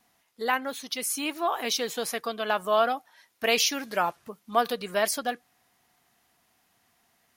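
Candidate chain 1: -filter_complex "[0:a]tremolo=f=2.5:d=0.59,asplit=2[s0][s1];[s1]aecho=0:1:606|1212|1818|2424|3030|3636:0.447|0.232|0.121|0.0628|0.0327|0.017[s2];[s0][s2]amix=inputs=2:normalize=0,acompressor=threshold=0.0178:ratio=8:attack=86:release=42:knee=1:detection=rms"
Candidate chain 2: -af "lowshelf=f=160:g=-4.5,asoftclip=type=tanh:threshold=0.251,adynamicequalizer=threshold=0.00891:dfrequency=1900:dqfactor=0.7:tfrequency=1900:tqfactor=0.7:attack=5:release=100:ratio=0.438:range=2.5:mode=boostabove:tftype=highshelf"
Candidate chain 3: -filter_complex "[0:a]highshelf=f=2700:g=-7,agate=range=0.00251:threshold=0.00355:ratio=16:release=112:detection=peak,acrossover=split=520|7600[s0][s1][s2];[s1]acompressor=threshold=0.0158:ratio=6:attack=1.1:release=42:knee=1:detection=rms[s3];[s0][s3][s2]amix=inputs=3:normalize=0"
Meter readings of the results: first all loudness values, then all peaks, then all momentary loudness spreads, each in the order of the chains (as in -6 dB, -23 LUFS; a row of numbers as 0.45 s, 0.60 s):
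-34.0 LUFS, -26.0 LUFS, -35.0 LUFS; -17.5 dBFS, -9.5 dBFS, -20.5 dBFS; 11 LU, 9 LU, 5 LU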